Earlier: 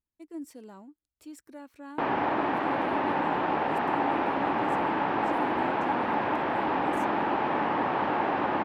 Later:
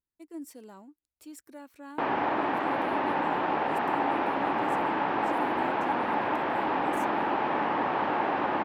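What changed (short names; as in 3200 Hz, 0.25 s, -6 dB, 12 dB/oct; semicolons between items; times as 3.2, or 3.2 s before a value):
speech: add high shelf 9300 Hz +8 dB; master: add low shelf 200 Hz -5 dB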